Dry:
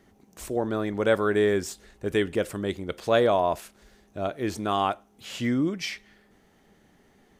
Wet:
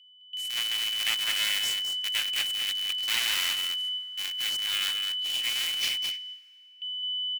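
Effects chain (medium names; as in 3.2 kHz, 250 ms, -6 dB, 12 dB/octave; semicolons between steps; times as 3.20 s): cycle switcher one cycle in 2, inverted; whistle 3 kHz -30 dBFS; Chebyshev high-pass 2.2 kHz, order 3; Chebyshev shaper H 3 -17 dB, 5 -7 dB, 7 -21 dB, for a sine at -8 dBFS; gate with hold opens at -23 dBFS; on a send: delay 212 ms -6.5 dB; on the sum: plate-style reverb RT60 2.9 s, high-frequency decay 0.7×, pre-delay 0 ms, DRR 17 dB; in parallel at -3.5 dB: small samples zeroed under -18.5 dBFS; on the sum: trim -8.5 dB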